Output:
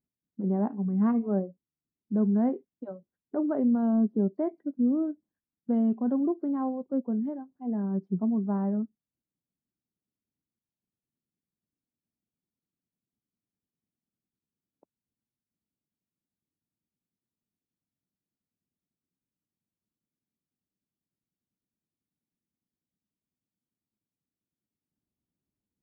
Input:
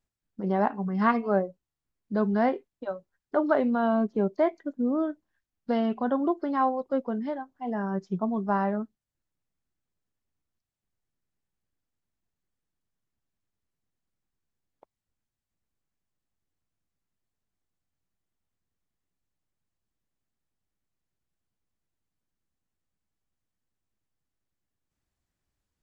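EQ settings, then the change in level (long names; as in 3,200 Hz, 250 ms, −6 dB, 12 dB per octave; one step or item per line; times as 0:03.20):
resonant band-pass 230 Hz, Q 1.5
high-frequency loss of the air 110 metres
+3.0 dB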